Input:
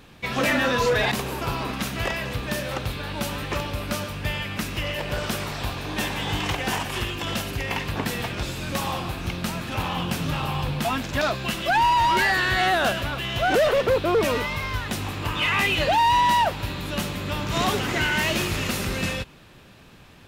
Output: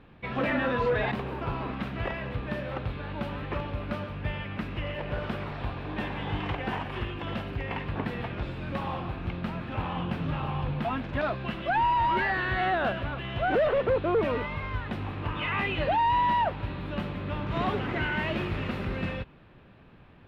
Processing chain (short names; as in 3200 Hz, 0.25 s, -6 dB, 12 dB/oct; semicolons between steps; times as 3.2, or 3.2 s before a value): air absorption 470 m; gain -3 dB